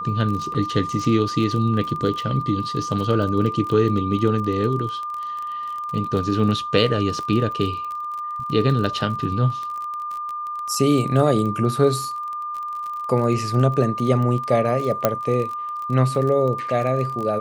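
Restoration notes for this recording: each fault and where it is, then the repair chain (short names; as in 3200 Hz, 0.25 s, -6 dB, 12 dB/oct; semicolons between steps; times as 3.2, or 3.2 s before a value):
crackle 29/s -27 dBFS
tone 1200 Hz -26 dBFS
0.54–0.55 gap 7.1 ms
15.05 pop -3 dBFS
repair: de-click; notch 1200 Hz, Q 30; interpolate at 0.54, 7.1 ms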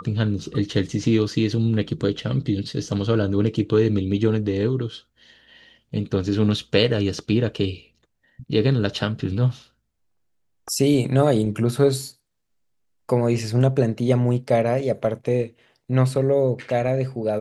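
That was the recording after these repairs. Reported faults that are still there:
15.05 pop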